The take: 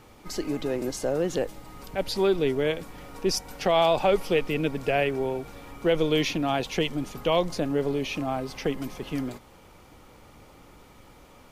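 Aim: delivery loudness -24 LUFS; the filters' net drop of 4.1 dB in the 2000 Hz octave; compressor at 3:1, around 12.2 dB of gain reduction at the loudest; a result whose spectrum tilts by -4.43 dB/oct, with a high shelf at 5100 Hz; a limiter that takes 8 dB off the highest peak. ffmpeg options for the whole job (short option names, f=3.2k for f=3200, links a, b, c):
-af "equalizer=f=2k:t=o:g=-6.5,highshelf=f=5.1k:g=5.5,acompressor=threshold=-35dB:ratio=3,volume=15.5dB,alimiter=limit=-13.5dB:level=0:latency=1"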